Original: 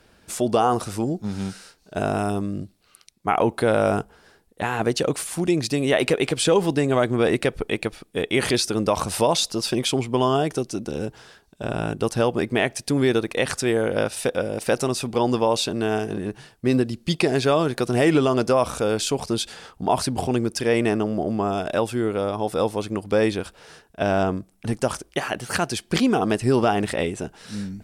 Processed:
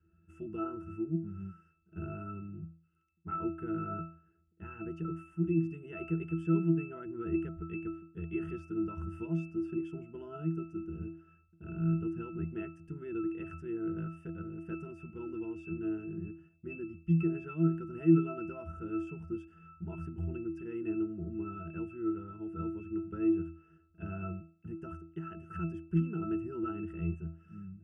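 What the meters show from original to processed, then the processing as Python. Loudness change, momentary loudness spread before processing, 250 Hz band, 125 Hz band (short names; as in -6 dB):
-13.5 dB, 10 LU, -9.5 dB, -8.0 dB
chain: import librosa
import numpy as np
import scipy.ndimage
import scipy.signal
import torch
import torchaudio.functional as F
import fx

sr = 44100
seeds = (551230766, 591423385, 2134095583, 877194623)

y = fx.fixed_phaser(x, sr, hz=1700.0, stages=4)
y = fx.octave_resonator(y, sr, note='E', decay_s=0.41)
y = y * 10.0 ** (5.0 / 20.0)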